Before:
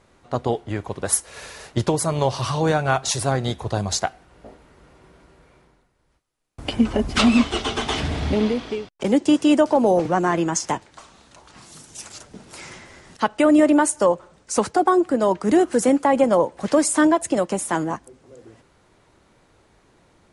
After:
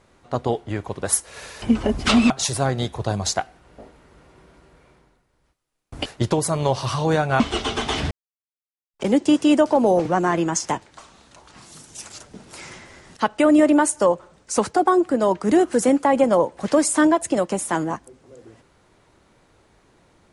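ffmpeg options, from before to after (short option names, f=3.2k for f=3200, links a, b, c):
-filter_complex "[0:a]asplit=7[a][b][c][d][e][f][g];[a]atrim=end=1.622[h];[b]atrim=start=6.718:end=7.402[i];[c]atrim=start=2.958:end=6.722[j];[d]atrim=start=1.618:end=2.962[k];[e]atrim=start=7.398:end=8.11,asetpts=PTS-STARTPTS,afade=t=out:st=0.708:d=0.004:c=hsin[l];[f]atrim=start=8.11:end=8.94,asetpts=PTS-STARTPTS,volume=0[m];[g]atrim=start=8.94,asetpts=PTS-STARTPTS,afade=t=in:d=0.004:c=hsin[n];[h][i]acrossfade=d=0.004:c1=hsin:c2=hsin[o];[o][j]acrossfade=d=0.004:c1=hsin:c2=hsin[p];[p][k]acrossfade=d=0.004:c1=hsin:c2=hsin[q];[l][m][n]concat=n=3:v=0:a=1[r];[q][r]acrossfade=d=0.004:c1=hsin:c2=hsin"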